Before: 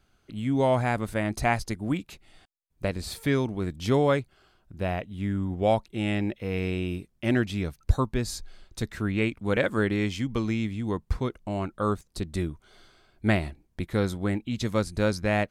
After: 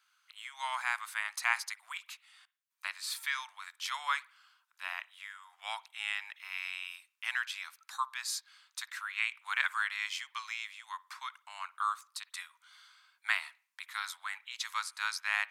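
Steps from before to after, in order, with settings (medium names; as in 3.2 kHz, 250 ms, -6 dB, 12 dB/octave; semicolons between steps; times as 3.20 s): steep high-pass 990 Hz 48 dB/octave; on a send: reverberation, pre-delay 53 ms, DRR 21 dB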